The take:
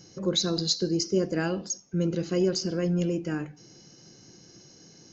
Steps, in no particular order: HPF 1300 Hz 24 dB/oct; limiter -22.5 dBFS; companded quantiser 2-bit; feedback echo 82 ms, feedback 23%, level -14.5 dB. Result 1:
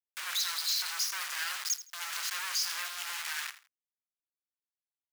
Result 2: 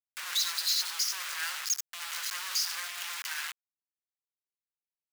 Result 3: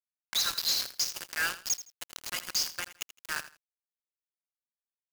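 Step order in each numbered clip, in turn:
companded quantiser > HPF > limiter > feedback echo; feedback echo > limiter > companded quantiser > HPF; HPF > limiter > companded quantiser > feedback echo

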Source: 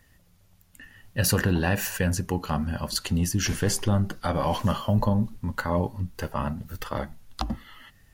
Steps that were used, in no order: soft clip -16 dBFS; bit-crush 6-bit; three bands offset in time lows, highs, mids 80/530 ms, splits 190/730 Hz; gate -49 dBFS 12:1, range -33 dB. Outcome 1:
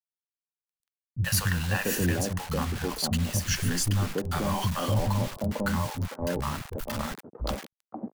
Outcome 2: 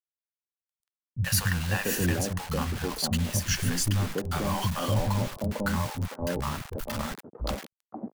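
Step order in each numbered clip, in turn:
bit-crush > gate > three bands offset in time > soft clip; soft clip > bit-crush > gate > three bands offset in time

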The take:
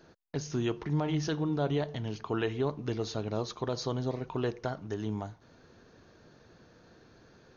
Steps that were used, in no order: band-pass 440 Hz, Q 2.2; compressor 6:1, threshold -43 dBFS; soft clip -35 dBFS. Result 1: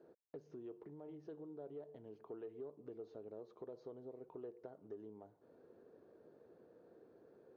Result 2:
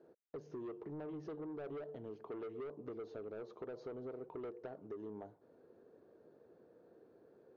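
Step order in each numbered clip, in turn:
compressor > band-pass > soft clip; band-pass > soft clip > compressor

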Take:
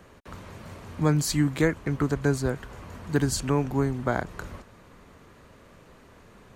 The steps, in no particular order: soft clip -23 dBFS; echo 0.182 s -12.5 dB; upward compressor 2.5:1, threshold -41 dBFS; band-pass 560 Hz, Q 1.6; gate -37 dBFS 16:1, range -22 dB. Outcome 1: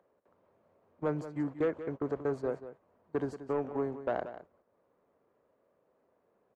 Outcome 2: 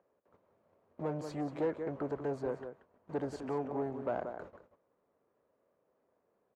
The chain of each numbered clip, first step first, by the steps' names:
band-pass > upward compressor > gate > soft clip > echo; upward compressor > gate > echo > soft clip > band-pass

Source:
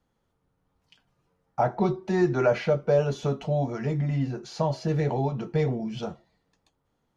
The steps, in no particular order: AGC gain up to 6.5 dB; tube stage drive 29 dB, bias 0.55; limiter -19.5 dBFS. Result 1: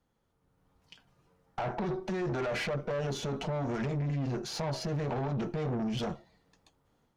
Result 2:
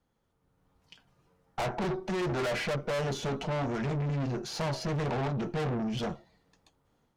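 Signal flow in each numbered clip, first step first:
AGC > limiter > tube stage; AGC > tube stage > limiter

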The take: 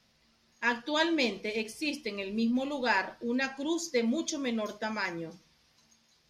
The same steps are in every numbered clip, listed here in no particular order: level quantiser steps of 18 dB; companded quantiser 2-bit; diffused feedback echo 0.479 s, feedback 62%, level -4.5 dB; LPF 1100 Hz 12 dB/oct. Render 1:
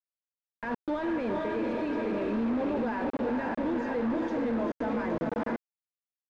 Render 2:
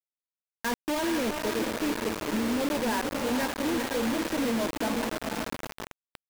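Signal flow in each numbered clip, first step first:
diffused feedback echo > level quantiser > companded quantiser > LPF; LPF > level quantiser > diffused feedback echo > companded quantiser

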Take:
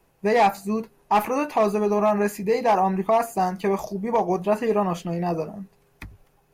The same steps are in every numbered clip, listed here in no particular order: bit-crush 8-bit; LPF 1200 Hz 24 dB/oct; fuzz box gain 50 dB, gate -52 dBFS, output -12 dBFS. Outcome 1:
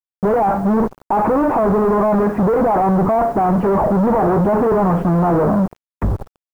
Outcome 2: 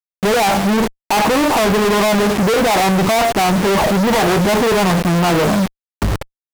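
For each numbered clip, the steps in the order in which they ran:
fuzz box > LPF > bit-crush; LPF > bit-crush > fuzz box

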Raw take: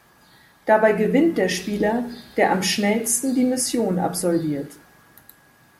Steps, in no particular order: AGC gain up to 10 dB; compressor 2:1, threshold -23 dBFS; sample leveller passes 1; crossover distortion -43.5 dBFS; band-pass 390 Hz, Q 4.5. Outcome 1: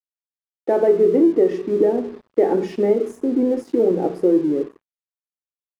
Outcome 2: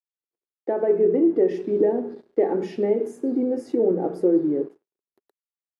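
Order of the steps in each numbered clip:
sample leveller > band-pass > compressor > AGC > crossover distortion; crossover distortion > compressor > sample leveller > AGC > band-pass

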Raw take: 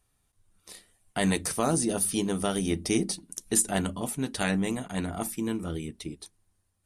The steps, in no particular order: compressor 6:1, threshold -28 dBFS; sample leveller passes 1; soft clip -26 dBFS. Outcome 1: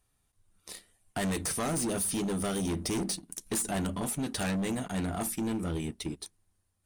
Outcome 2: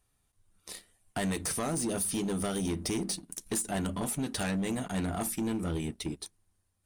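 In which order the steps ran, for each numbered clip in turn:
sample leveller > soft clip > compressor; compressor > sample leveller > soft clip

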